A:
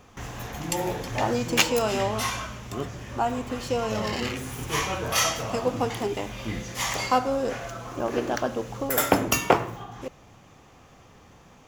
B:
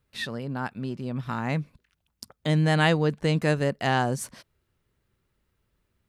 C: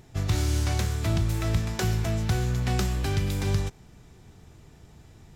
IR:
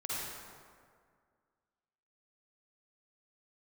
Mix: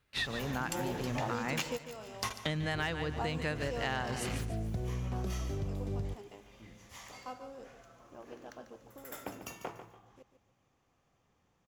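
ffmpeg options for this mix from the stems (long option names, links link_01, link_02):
-filter_complex "[0:a]volume=-4.5dB,asplit=2[link_01][link_02];[link_02]volume=-18dB[link_03];[1:a]equalizer=frequency=2300:width_type=o:width=2.9:gain=8.5,volume=-4dB,asplit=3[link_04][link_05][link_06];[link_05]volume=-11.5dB[link_07];[2:a]afwtdn=0.0355,equalizer=frequency=110:width_type=o:width=1.4:gain=-4,adelay=2450,volume=-5.5dB[link_08];[link_06]apad=whole_len=514704[link_09];[link_01][link_09]sidechaingate=range=-33dB:threshold=-48dB:ratio=16:detection=peak[link_10];[link_03][link_07]amix=inputs=2:normalize=0,aecho=0:1:145|290|435|580:1|0.29|0.0841|0.0244[link_11];[link_10][link_04][link_08][link_11]amix=inputs=4:normalize=0,asoftclip=type=hard:threshold=-10.5dB,acompressor=threshold=-31dB:ratio=8"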